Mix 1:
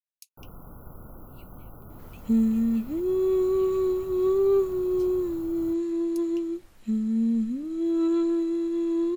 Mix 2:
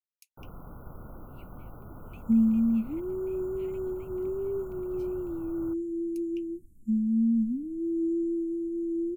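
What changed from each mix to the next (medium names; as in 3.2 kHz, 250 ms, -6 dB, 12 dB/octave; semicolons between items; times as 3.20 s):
second sound: add inverse Chebyshev band-stop 570–4400 Hz, stop band 40 dB; master: add resonant high shelf 3 kHz -8 dB, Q 1.5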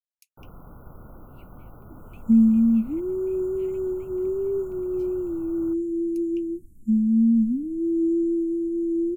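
second sound +6.0 dB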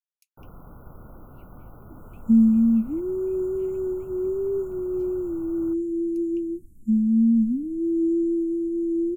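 speech -6.5 dB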